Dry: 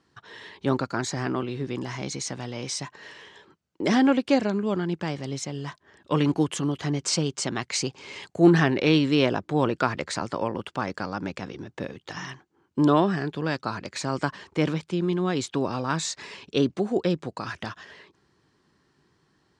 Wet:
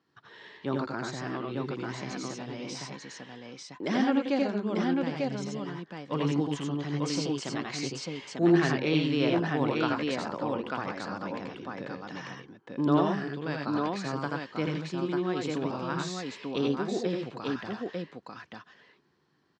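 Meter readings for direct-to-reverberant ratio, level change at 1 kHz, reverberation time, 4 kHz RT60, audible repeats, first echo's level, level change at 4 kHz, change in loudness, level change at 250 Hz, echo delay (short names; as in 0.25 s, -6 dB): none, -4.0 dB, none, none, 2, -3.5 dB, -5.5 dB, -4.5 dB, -4.0 dB, 82 ms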